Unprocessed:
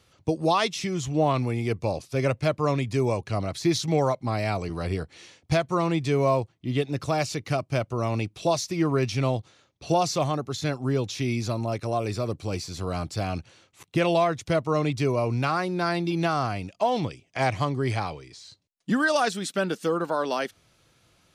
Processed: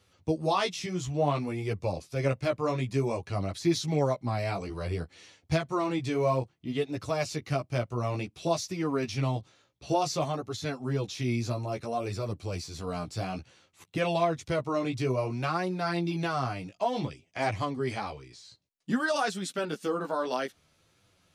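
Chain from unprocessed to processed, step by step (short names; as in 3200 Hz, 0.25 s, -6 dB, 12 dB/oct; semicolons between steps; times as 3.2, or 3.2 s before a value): flange 0.57 Hz, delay 9.8 ms, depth 7.7 ms, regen -2%; gain -1.5 dB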